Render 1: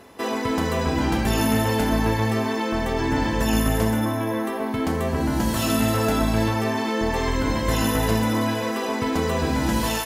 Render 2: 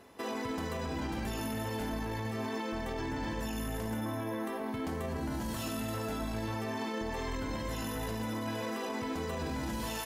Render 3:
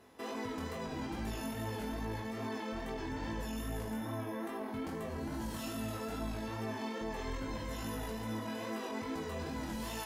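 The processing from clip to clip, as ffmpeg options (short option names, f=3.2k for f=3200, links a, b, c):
-af "alimiter=limit=-19dB:level=0:latency=1:release=18,volume=-9dB"
-af "flanger=delay=18:depth=4.7:speed=2.4,volume=-1dB"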